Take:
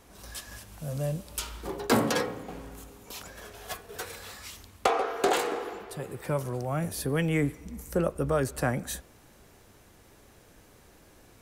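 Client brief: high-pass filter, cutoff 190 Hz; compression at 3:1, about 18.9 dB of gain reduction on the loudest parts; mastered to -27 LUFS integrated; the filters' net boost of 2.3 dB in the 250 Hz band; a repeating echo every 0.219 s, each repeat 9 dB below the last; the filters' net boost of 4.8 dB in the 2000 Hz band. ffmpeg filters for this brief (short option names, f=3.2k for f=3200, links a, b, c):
-af "highpass=190,equalizer=f=250:t=o:g=5,equalizer=f=2k:t=o:g=6,acompressor=threshold=-44dB:ratio=3,aecho=1:1:219|438|657|876:0.355|0.124|0.0435|0.0152,volume=16.5dB"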